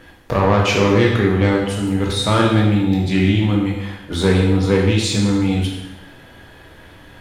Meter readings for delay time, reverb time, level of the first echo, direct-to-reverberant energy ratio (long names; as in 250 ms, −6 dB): no echo audible, 1.0 s, no echo audible, −2.5 dB